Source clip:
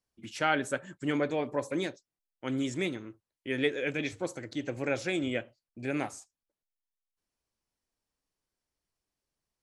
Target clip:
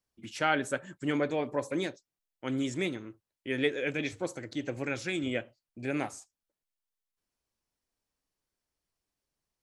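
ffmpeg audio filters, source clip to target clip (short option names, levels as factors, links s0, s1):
-filter_complex "[0:a]asettb=1/sr,asplit=3[s0][s1][s2];[s0]atrim=end=4.834[s3];[s1]atrim=start=4.83:end=5.26,asetpts=PTS-STARTPTS,afade=t=in:d=0.004:c=qsin,afade=t=out:st=0.426:d=0.004:c=qsin,equalizer=f=620:t=o:w=1:g=-9[s4];[s2]atrim=start=5.256[s5];[s3][s4]acrossfade=d=0.004:c1=hsin:c2=qsin[s6];[s6][s5]acrossfade=d=0.004:c1=qsin:c2=hsin"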